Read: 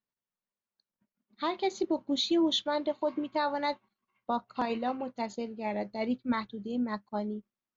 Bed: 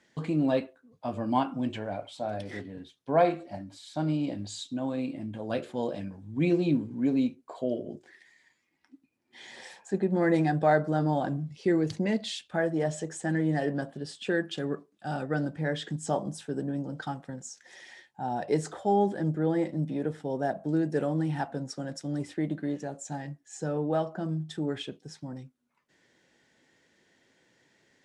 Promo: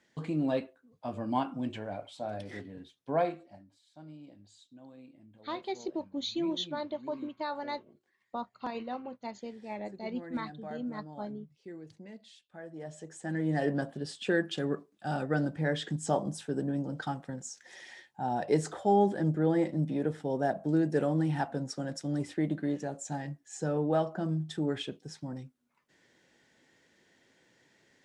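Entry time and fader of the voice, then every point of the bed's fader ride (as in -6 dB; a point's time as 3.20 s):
4.05 s, -6.0 dB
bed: 3.12 s -4 dB
3.84 s -20.5 dB
12.48 s -20.5 dB
13.66 s 0 dB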